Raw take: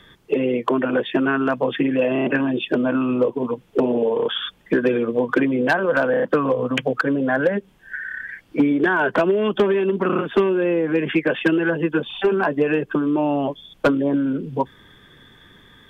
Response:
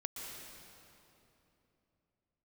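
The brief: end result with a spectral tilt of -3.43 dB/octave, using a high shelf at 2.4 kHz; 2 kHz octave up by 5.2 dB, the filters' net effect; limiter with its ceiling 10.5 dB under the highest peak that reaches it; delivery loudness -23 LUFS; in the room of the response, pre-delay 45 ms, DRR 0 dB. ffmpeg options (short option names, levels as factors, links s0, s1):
-filter_complex "[0:a]equalizer=f=2000:t=o:g=3.5,highshelf=f=2400:g=8.5,alimiter=limit=0.282:level=0:latency=1,asplit=2[s0][s1];[1:a]atrim=start_sample=2205,adelay=45[s2];[s1][s2]afir=irnorm=-1:irlink=0,volume=1.06[s3];[s0][s3]amix=inputs=2:normalize=0,volume=0.531"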